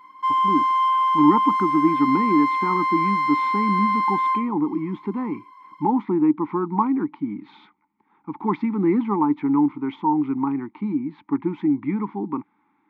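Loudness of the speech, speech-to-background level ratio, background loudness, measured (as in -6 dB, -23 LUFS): -23.5 LUFS, -2.5 dB, -21.0 LUFS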